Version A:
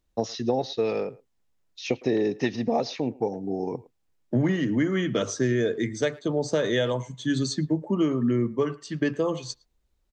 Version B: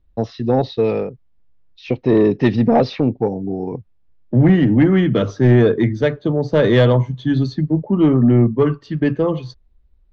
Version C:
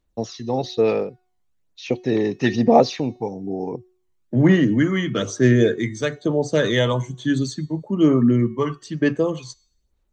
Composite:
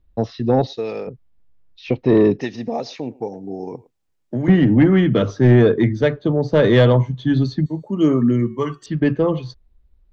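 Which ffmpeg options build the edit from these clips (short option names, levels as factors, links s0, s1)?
-filter_complex "[0:a]asplit=2[s0][s1];[1:a]asplit=4[s2][s3][s4][s5];[s2]atrim=end=0.672[s6];[s0]atrim=start=0.668:end=1.072[s7];[s3]atrim=start=1.068:end=2.412[s8];[s1]atrim=start=2.408:end=4.482[s9];[s4]atrim=start=4.478:end=7.662[s10];[2:a]atrim=start=7.658:end=8.862[s11];[s5]atrim=start=8.858[s12];[s6][s7]acrossfade=d=0.004:c1=hsin:c2=hsin[s13];[s13][s8]acrossfade=d=0.004:c1=hsin:c2=hsin[s14];[s14][s9]acrossfade=d=0.004:c1=hsin:c2=hsin[s15];[s15][s10]acrossfade=d=0.004:c1=hsin:c2=hsin[s16];[s16][s11]acrossfade=d=0.004:c1=hsin:c2=hsin[s17];[s17][s12]acrossfade=d=0.004:c1=hsin:c2=hsin"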